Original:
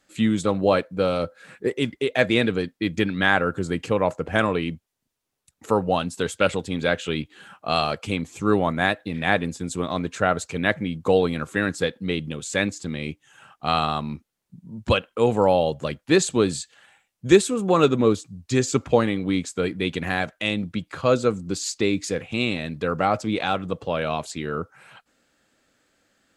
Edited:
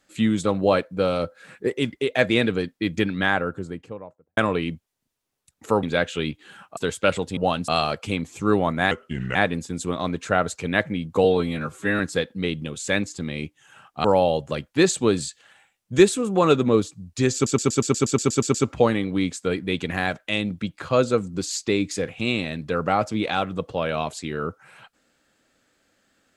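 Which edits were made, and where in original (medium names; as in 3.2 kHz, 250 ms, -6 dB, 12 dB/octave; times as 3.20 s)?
2.96–4.37 s: studio fade out
5.83–6.14 s: swap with 6.74–7.68 s
8.91–9.26 s: speed 79%
11.15–11.65 s: stretch 1.5×
13.70–15.37 s: delete
18.67 s: stutter 0.12 s, 11 plays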